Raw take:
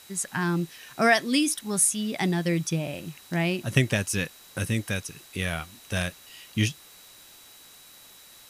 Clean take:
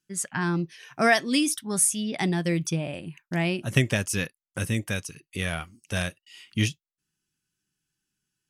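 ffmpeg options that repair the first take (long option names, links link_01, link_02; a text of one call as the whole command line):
ffmpeg -i in.wav -af "bandreject=frequency=3900:width=30,afwtdn=0.0032" out.wav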